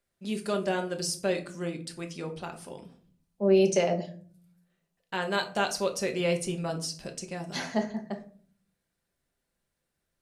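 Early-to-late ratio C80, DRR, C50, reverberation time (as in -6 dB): 17.5 dB, 3.5 dB, 12.5 dB, 0.50 s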